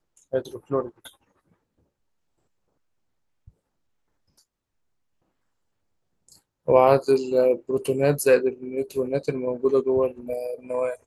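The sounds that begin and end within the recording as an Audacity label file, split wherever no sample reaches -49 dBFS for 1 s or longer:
3.480000	4.400000	sound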